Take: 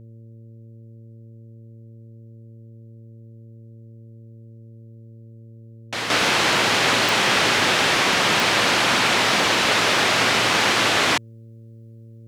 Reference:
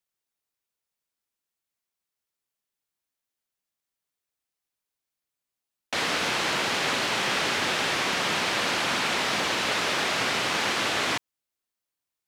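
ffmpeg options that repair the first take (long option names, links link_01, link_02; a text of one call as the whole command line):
ffmpeg -i in.wav -af "adeclick=threshold=4,bandreject=frequency=113.5:width_type=h:width=4,bandreject=frequency=227:width_type=h:width=4,bandreject=frequency=340.5:width_type=h:width=4,bandreject=frequency=454:width_type=h:width=4,bandreject=frequency=567.5:width_type=h:width=4,asetnsamples=nb_out_samples=441:pad=0,asendcmd='6.1 volume volume -7.5dB',volume=0dB" out.wav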